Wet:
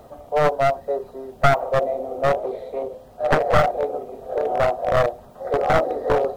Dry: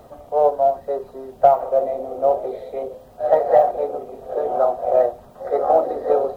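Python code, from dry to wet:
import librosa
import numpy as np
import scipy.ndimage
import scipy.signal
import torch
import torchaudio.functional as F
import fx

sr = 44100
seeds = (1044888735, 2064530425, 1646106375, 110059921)

y = np.minimum(x, 2.0 * 10.0 ** (-15.0 / 20.0) - x)
y = fx.doppler_dist(y, sr, depth_ms=0.68, at=(2.38, 3.4))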